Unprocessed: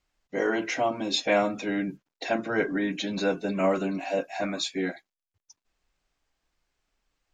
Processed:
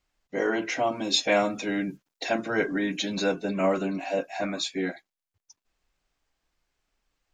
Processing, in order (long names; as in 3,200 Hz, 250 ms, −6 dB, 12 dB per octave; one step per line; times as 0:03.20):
0:00.87–0:03.32: high-shelf EQ 4,300 Hz +7.5 dB